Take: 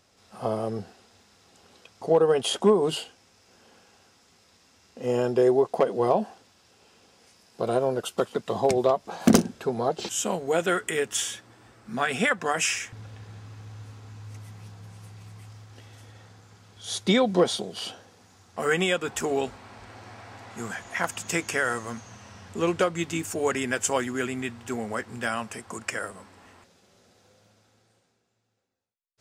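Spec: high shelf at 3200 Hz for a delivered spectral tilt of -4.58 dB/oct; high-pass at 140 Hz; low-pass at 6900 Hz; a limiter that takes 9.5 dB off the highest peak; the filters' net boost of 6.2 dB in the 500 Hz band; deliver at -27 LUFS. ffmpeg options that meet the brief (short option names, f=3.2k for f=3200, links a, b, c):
-af "highpass=140,lowpass=6.9k,equalizer=f=500:t=o:g=7.5,highshelf=f=3.2k:g=-3.5,volume=-3dB,alimiter=limit=-14dB:level=0:latency=1"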